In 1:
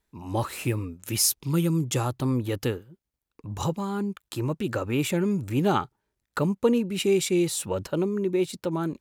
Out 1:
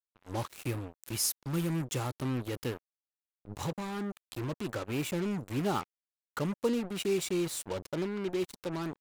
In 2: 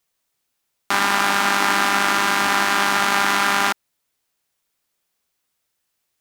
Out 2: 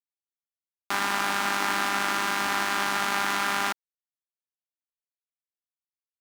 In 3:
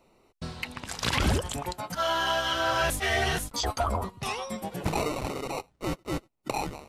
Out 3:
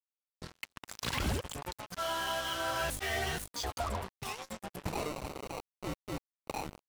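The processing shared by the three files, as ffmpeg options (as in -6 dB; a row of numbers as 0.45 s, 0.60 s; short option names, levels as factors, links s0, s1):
-af "acrusher=bits=4:mix=0:aa=0.5,volume=0.398"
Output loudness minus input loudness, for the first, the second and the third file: -8.0 LU, -8.0 LU, -7.5 LU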